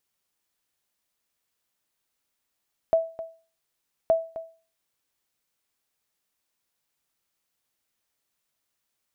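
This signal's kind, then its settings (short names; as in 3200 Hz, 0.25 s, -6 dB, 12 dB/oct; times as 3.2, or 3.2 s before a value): sonar ping 655 Hz, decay 0.37 s, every 1.17 s, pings 2, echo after 0.26 s, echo -14.5 dB -13 dBFS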